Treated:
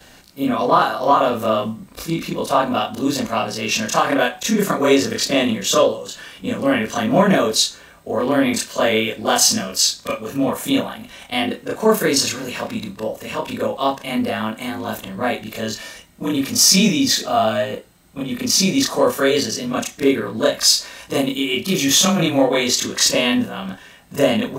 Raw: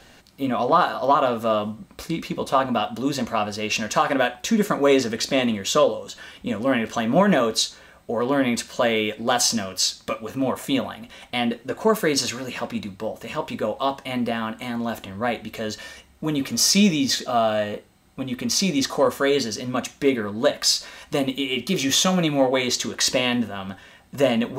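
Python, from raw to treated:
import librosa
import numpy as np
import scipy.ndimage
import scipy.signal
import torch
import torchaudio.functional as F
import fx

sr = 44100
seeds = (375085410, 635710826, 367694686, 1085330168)

y = fx.frame_reverse(x, sr, frame_ms=73.0)
y = fx.high_shelf(y, sr, hz=7300.0, db=7.0)
y = y * 10.0 ** (6.5 / 20.0)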